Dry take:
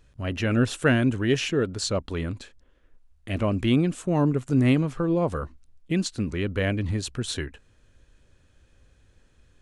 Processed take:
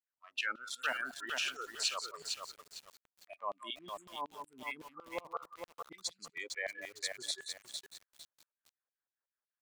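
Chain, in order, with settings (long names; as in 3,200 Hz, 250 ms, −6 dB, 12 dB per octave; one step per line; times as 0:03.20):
adaptive Wiener filter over 15 samples
repeating echo 177 ms, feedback 24%, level −10.5 dB
brickwall limiter −19.5 dBFS, peak gain reduction 11 dB
noise reduction from a noise print of the clip's start 24 dB
auto-filter high-pass saw down 5.4 Hz 730–3,600 Hz
feedback echo at a low word length 455 ms, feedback 35%, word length 8 bits, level −4.5 dB
level −4 dB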